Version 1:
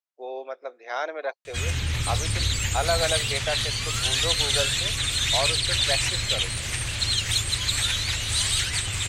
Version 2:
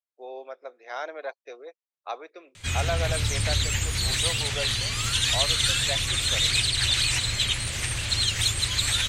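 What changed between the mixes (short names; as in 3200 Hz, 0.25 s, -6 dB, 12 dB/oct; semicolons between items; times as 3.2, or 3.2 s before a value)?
speech -4.5 dB; background: entry +1.10 s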